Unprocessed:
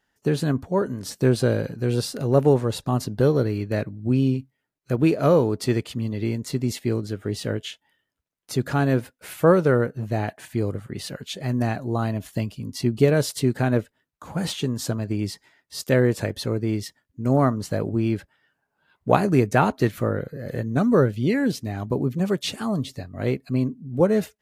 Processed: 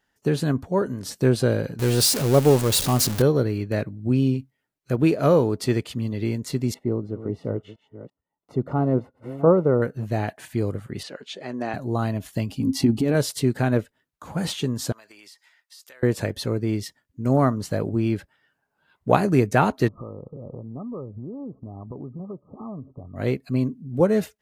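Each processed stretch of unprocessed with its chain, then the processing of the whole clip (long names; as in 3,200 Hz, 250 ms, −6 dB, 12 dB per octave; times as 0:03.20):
0:01.79–0:03.22: converter with a step at zero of −27 dBFS + high-shelf EQ 3,500 Hz +11 dB
0:06.74–0:09.82: delay that plays each chunk backwards 340 ms, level −13 dB + Savitzky-Golay smoothing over 65 samples + low-shelf EQ 67 Hz −8.5 dB
0:11.03–0:11.74: Chebyshev high-pass filter 360 Hz + high-frequency loss of the air 88 metres
0:12.49–0:13.15: compressor whose output falls as the input rises −22 dBFS + hollow resonant body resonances 270/800 Hz, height 14 dB, ringing for 90 ms
0:14.92–0:16.03: high-pass filter 1,100 Hz + downward compressor 12 to 1, threshold −44 dBFS
0:19.88–0:23.16: downward compressor 5 to 1, threshold −33 dBFS + linear-phase brick-wall low-pass 1,300 Hz
whole clip: no processing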